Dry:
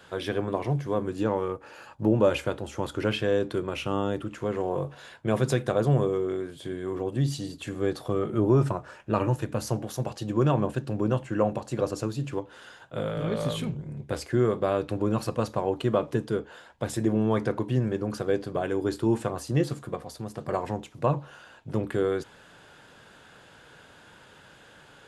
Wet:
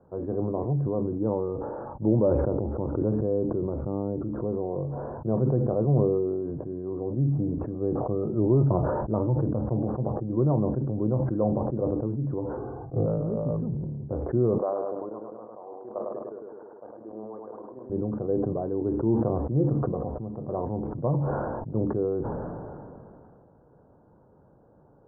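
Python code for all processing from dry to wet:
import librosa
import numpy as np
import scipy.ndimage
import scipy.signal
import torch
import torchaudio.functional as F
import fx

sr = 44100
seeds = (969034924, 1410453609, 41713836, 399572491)

y = fx.chain(x, sr, fx.gaussian_blur(sigma=4.7),
    fx.pre_swell(db_per_s=34.0), at=(2.48, 5.17))
y = fx.chain(y, sr, fx.lowpass(hz=1300.0, slope=24),
    fx.peak_eq(hz=140.0, db=12.0, octaves=2.3),
    fx.comb(ms=2.6, depth=0.79), at=(12.57, 13.06))
y = fx.chain(y, sr, fx.highpass(hz=690.0, slope=12),
    fx.level_steps(step_db=13),
    fx.echo_feedback(ms=103, feedback_pct=55, wet_db=-3.5), at=(14.58, 17.9))
y = scipy.signal.sosfilt(scipy.signal.bessel(8, 580.0, 'lowpass', norm='mag', fs=sr, output='sos'), y)
y = fx.sustainer(y, sr, db_per_s=22.0)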